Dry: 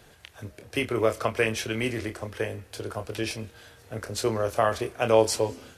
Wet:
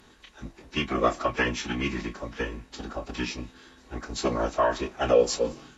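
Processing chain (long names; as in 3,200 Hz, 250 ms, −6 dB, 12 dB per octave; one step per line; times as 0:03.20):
phase-vocoder pitch shift with formants kept −10.5 semitones
hollow resonant body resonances 1,100/3,800 Hz, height 13 dB, ringing for 95 ms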